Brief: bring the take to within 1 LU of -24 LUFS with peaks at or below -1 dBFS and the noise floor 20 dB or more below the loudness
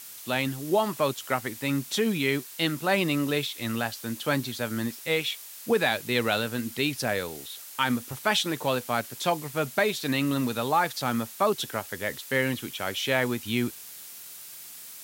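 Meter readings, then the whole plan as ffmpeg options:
noise floor -44 dBFS; noise floor target -48 dBFS; loudness -27.5 LUFS; peak -9.5 dBFS; loudness target -24.0 LUFS
-> -af "afftdn=nr=6:nf=-44"
-af "volume=3.5dB"

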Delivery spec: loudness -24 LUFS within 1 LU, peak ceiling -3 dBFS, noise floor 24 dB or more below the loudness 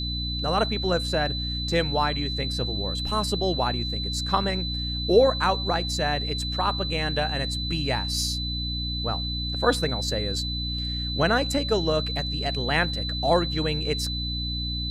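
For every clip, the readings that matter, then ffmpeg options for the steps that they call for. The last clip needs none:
hum 60 Hz; harmonics up to 300 Hz; hum level -29 dBFS; steady tone 4000 Hz; tone level -30 dBFS; loudness -25.5 LUFS; peak -6.5 dBFS; loudness target -24.0 LUFS
-> -af "bandreject=f=60:t=h:w=6,bandreject=f=120:t=h:w=6,bandreject=f=180:t=h:w=6,bandreject=f=240:t=h:w=6,bandreject=f=300:t=h:w=6"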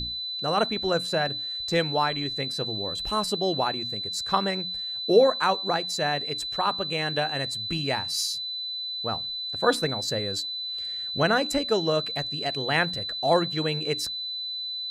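hum none; steady tone 4000 Hz; tone level -30 dBFS
-> -af "bandreject=f=4k:w=30"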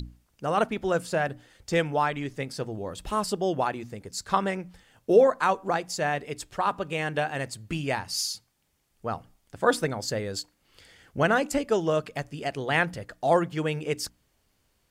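steady tone none; loudness -27.5 LUFS; peak -8.0 dBFS; loudness target -24.0 LUFS
-> -af "volume=3.5dB"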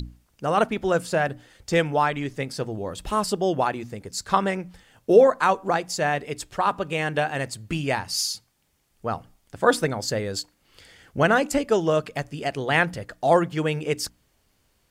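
loudness -24.0 LUFS; peak -4.5 dBFS; noise floor -68 dBFS

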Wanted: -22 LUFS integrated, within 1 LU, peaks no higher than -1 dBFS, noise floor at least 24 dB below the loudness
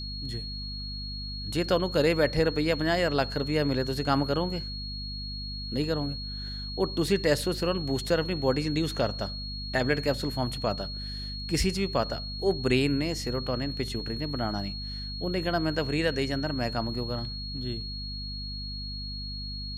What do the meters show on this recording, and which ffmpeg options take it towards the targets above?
hum 50 Hz; harmonics up to 250 Hz; hum level -35 dBFS; steady tone 4300 Hz; tone level -37 dBFS; loudness -29.0 LUFS; peak -10.5 dBFS; loudness target -22.0 LUFS
-> -af "bandreject=f=50:t=h:w=6,bandreject=f=100:t=h:w=6,bandreject=f=150:t=h:w=6,bandreject=f=200:t=h:w=6,bandreject=f=250:t=h:w=6"
-af "bandreject=f=4.3k:w=30"
-af "volume=7dB"

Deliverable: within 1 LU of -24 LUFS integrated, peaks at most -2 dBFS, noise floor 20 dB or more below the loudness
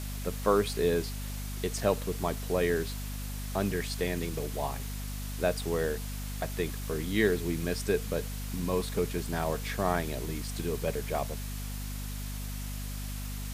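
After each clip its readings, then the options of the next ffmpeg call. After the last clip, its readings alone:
hum 50 Hz; harmonics up to 250 Hz; hum level -35 dBFS; noise floor -37 dBFS; noise floor target -53 dBFS; loudness -32.5 LUFS; peak -11.0 dBFS; loudness target -24.0 LUFS
-> -af "bandreject=f=50:t=h:w=4,bandreject=f=100:t=h:w=4,bandreject=f=150:t=h:w=4,bandreject=f=200:t=h:w=4,bandreject=f=250:t=h:w=4"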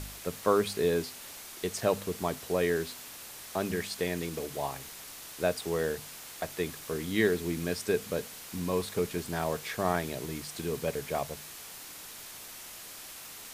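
hum none; noise floor -46 dBFS; noise floor target -53 dBFS
-> -af "afftdn=nr=7:nf=-46"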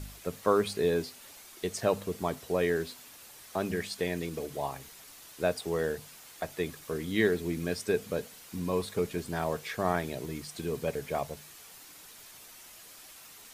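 noise floor -51 dBFS; noise floor target -53 dBFS
-> -af "afftdn=nr=6:nf=-51"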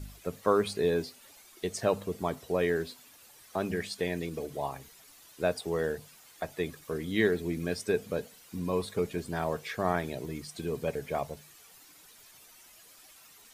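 noise floor -56 dBFS; loudness -32.5 LUFS; peak -11.0 dBFS; loudness target -24.0 LUFS
-> -af "volume=8.5dB"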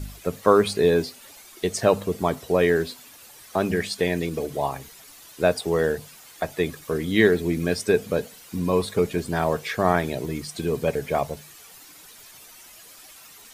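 loudness -24.0 LUFS; peak -2.5 dBFS; noise floor -48 dBFS

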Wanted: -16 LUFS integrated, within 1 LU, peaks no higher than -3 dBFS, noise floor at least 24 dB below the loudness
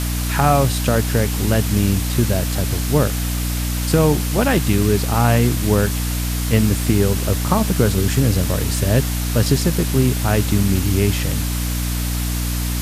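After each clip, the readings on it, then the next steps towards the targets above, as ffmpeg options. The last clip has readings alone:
hum 60 Hz; harmonics up to 300 Hz; hum level -19 dBFS; noise floor -22 dBFS; noise floor target -43 dBFS; loudness -18.5 LUFS; peak -2.5 dBFS; loudness target -16.0 LUFS
-> -af "bandreject=f=60:t=h:w=6,bandreject=f=120:t=h:w=6,bandreject=f=180:t=h:w=6,bandreject=f=240:t=h:w=6,bandreject=f=300:t=h:w=6"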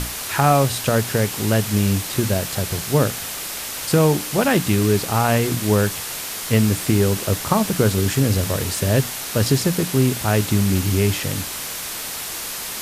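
hum none; noise floor -30 dBFS; noise floor target -44 dBFS
-> -af "afftdn=nr=14:nf=-30"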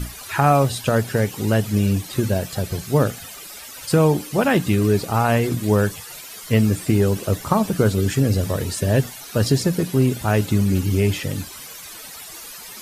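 noise floor -38 dBFS; noise floor target -44 dBFS
-> -af "afftdn=nr=6:nf=-38"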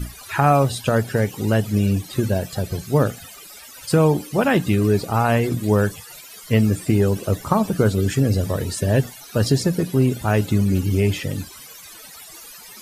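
noise floor -41 dBFS; noise floor target -45 dBFS
-> -af "afftdn=nr=6:nf=-41"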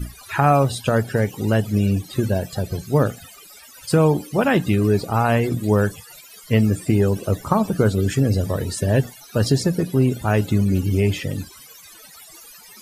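noise floor -45 dBFS; loudness -20.5 LUFS; peak -4.0 dBFS; loudness target -16.0 LUFS
-> -af "volume=4.5dB,alimiter=limit=-3dB:level=0:latency=1"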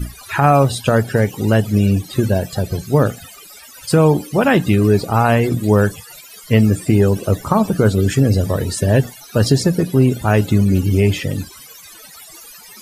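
loudness -16.0 LUFS; peak -3.0 dBFS; noise floor -40 dBFS

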